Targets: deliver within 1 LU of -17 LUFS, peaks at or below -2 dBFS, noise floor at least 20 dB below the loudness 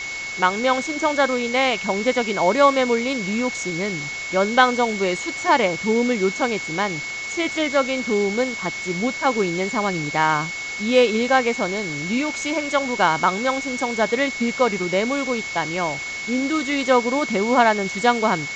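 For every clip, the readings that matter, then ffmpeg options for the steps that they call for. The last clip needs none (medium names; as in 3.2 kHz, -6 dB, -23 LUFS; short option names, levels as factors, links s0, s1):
steady tone 2.2 kHz; tone level -28 dBFS; noise floor -30 dBFS; noise floor target -41 dBFS; loudness -21.0 LUFS; peak level -2.0 dBFS; loudness target -17.0 LUFS
-> -af "bandreject=f=2200:w=30"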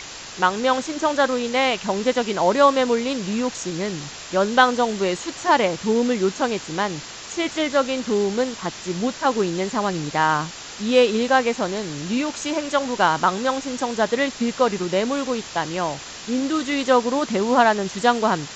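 steady tone not found; noise floor -37 dBFS; noise floor target -42 dBFS
-> -af "afftdn=nr=6:nf=-37"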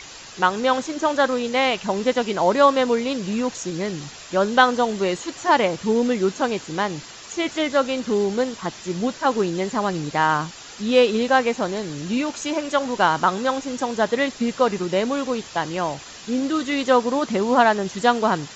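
noise floor -40 dBFS; noise floor target -42 dBFS
-> -af "afftdn=nr=6:nf=-40"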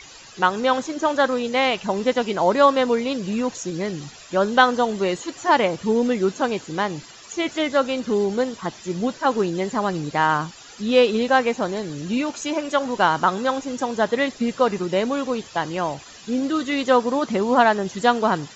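noise floor -44 dBFS; loudness -21.5 LUFS; peak level -2.0 dBFS; loudness target -17.0 LUFS
-> -af "volume=1.68,alimiter=limit=0.794:level=0:latency=1"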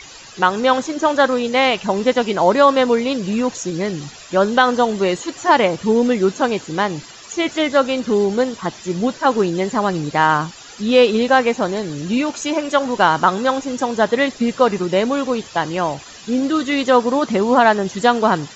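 loudness -17.5 LUFS; peak level -2.0 dBFS; noise floor -39 dBFS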